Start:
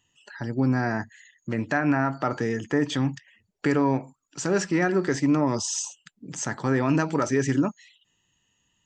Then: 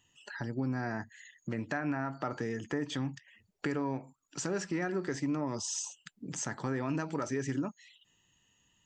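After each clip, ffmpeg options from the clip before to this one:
ffmpeg -i in.wav -af "acompressor=threshold=-39dB:ratio=2" out.wav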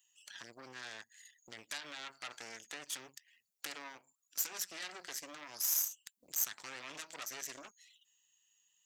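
ffmpeg -i in.wav -af "aeval=exprs='0.119*(cos(1*acos(clip(val(0)/0.119,-1,1)))-cos(1*PI/2))+0.0335*(cos(8*acos(clip(val(0)/0.119,-1,1)))-cos(8*PI/2))':channel_layout=same,aderivative,volume=1.5dB" out.wav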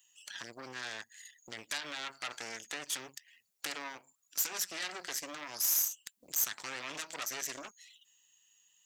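ffmpeg -i in.wav -af "asoftclip=type=tanh:threshold=-27dB,volume=6dB" out.wav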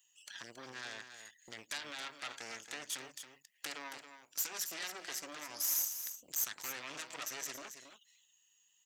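ffmpeg -i in.wav -af "aecho=1:1:275:0.335,volume=-4dB" out.wav

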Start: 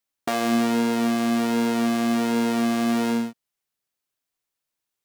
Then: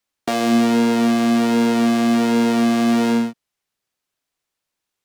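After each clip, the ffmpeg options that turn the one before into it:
ffmpeg -i in.wav -filter_complex "[0:a]highshelf=frequency=10000:gain=-9,acrossover=split=190|690|2400[link_01][link_02][link_03][link_04];[link_03]alimiter=level_in=2.5dB:limit=-24dB:level=0:latency=1,volume=-2.5dB[link_05];[link_01][link_02][link_05][link_04]amix=inputs=4:normalize=0,volume=6dB" out.wav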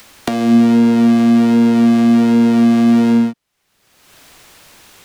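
ffmpeg -i in.wav -filter_complex "[0:a]acrossover=split=300[link_01][link_02];[link_02]acompressor=threshold=-28dB:ratio=10[link_03];[link_01][link_03]amix=inputs=2:normalize=0,bass=frequency=250:gain=2,treble=frequency=4000:gain=-3,acompressor=mode=upward:threshold=-26dB:ratio=2.5,volume=7dB" out.wav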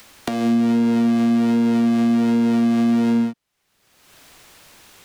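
ffmpeg -i in.wav -af "alimiter=limit=-7.5dB:level=0:latency=1:release=192,volume=-4dB" out.wav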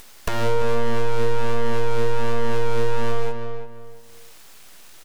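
ffmpeg -i in.wav -filter_complex "[0:a]aeval=exprs='abs(val(0))':channel_layout=same,asplit=2[link_01][link_02];[link_02]adelay=342,lowpass=frequency=2600:poles=1,volume=-10.5dB,asplit=2[link_03][link_04];[link_04]adelay=342,lowpass=frequency=2600:poles=1,volume=0.28,asplit=2[link_05][link_06];[link_06]adelay=342,lowpass=frequency=2600:poles=1,volume=0.28[link_07];[link_03][link_05][link_07]amix=inputs=3:normalize=0[link_08];[link_01][link_08]amix=inputs=2:normalize=0,asoftclip=type=tanh:threshold=-12.5dB,volume=3.5dB" out.wav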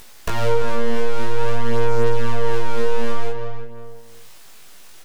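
ffmpeg -i in.wav -af "flanger=delay=17:depth=4.1:speed=0.51,volume=4dB" out.wav

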